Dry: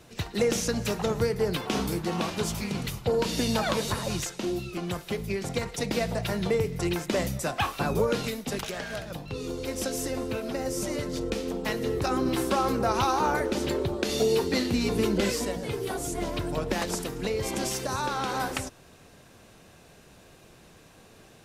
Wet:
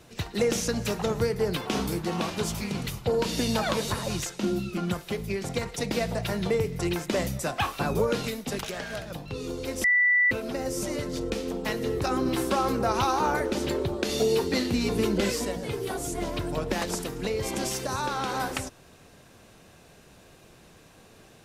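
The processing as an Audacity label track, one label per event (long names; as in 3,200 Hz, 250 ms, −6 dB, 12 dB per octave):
4.410000	4.940000	hollow resonant body resonances 210/1,400 Hz, height 14 dB, ringing for 95 ms
9.840000	10.310000	beep over 1,970 Hz −18 dBFS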